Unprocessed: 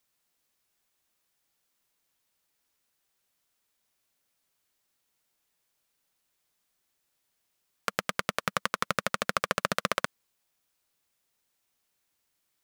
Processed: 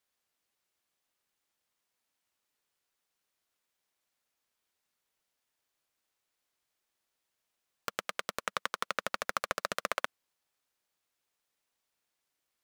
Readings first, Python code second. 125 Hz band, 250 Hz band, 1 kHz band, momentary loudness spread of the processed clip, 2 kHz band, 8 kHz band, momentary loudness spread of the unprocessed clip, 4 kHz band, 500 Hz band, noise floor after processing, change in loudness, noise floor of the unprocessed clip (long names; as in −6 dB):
−15.0 dB, −11.5 dB, −5.0 dB, 5 LU, −5.0 dB, −5.0 dB, 5 LU, −5.0 dB, −5.5 dB, −85 dBFS, −5.5 dB, −78 dBFS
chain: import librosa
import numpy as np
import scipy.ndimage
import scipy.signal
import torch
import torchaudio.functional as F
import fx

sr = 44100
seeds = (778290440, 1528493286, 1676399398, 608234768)

y = scipy.signal.sosfilt(scipy.signal.butter(2, 340.0, 'highpass', fs=sr, output='sos'), x)
y = fx.noise_mod_delay(y, sr, seeds[0], noise_hz=2200.0, depth_ms=0.035)
y = y * 10.0 ** (-5.0 / 20.0)